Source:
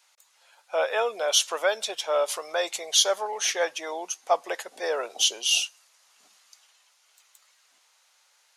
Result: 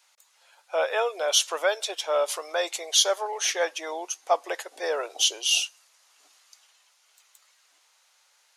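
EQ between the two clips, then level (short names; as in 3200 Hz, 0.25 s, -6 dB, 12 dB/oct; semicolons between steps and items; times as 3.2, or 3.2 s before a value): brick-wall FIR high-pass 260 Hz; 0.0 dB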